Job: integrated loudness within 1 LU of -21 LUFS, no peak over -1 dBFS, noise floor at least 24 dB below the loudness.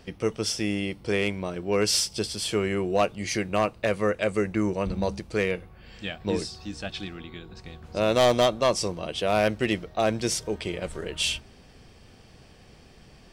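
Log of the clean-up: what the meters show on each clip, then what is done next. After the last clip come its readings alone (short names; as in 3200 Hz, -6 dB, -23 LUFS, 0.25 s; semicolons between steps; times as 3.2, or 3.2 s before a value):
clipped 0.3%; flat tops at -14.0 dBFS; loudness -26.5 LUFS; peak -14.0 dBFS; loudness target -21.0 LUFS
-> clip repair -14 dBFS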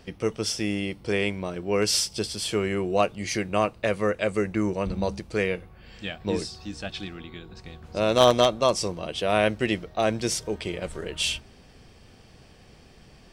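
clipped 0.0%; loudness -26.0 LUFS; peak -5.0 dBFS; loudness target -21.0 LUFS
-> gain +5 dB; limiter -1 dBFS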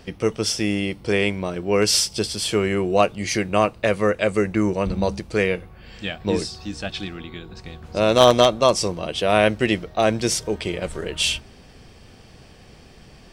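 loudness -21.0 LUFS; peak -1.0 dBFS; noise floor -47 dBFS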